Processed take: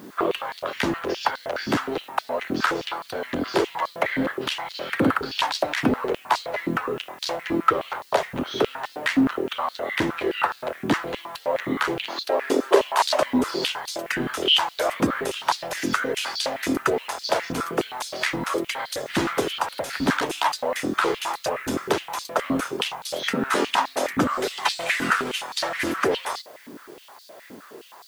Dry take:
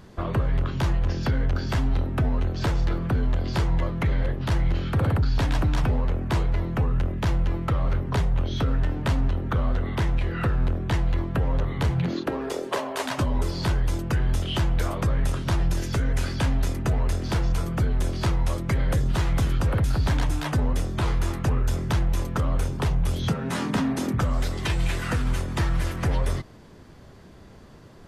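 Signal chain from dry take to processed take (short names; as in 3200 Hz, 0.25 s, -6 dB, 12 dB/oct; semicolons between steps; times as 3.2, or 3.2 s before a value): added noise blue -61 dBFS; stepped high-pass 9.6 Hz 270–4300 Hz; gain +4.5 dB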